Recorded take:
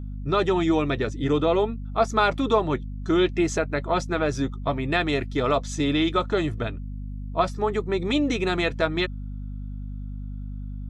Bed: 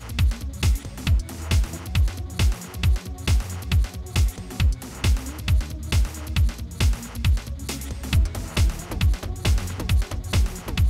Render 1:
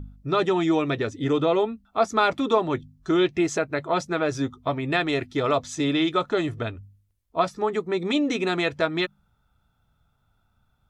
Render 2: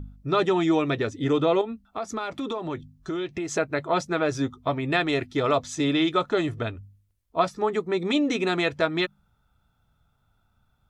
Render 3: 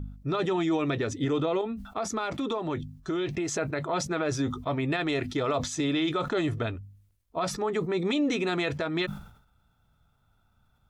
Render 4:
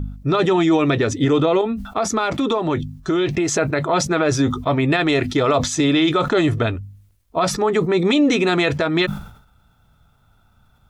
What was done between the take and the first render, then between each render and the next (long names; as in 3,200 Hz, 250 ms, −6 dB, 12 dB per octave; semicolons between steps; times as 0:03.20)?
hum removal 50 Hz, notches 5
0:01.61–0:03.53: downward compressor 5 to 1, threshold −27 dBFS
brickwall limiter −19.5 dBFS, peak gain reduction 10.5 dB; level that may fall only so fast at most 89 dB per second
level +10.5 dB